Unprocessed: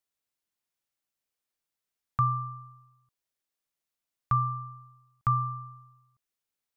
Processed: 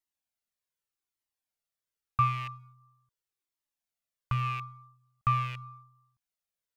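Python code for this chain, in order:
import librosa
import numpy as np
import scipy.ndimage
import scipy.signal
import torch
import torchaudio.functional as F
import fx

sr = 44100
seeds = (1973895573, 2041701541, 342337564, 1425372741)

p1 = fx.rattle_buzz(x, sr, strikes_db=-38.0, level_db=-26.0)
p2 = np.sign(p1) * np.maximum(np.abs(p1) - 10.0 ** (-48.0 / 20.0), 0.0)
p3 = p1 + (p2 * 10.0 ** (-12.0 / 20.0))
y = fx.comb_cascade(p3, sr, direction='falling', hz=0.84)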